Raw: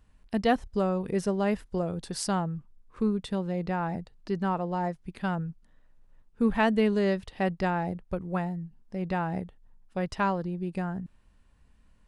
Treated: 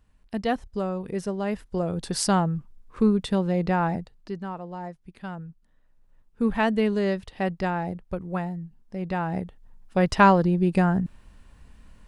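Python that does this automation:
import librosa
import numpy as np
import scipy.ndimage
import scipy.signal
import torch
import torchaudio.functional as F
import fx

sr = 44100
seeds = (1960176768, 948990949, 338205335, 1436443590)

y = fx.gain(x, sr, db=fx.line((1.47, -1.5), (2.1, 6.5), (3.86, 6.5), (4.47, -6.0), (5.38, -6.0), (6.46, 1.0), (9.1, 1.0), (10.2, 11.0)))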